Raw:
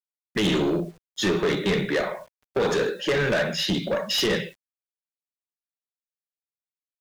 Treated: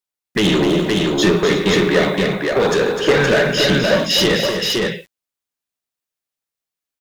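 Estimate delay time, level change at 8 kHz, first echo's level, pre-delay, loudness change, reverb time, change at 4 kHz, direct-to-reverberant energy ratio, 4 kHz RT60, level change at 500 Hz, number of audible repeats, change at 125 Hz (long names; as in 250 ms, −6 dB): 253 ms, +9.5 dB, −7.5 dB, no reverb audible, +8.5 dB, no reverb audible, +9.5 dB, no reverb audible, no reverb audible, +9.0 dB, 3, +9.0 dB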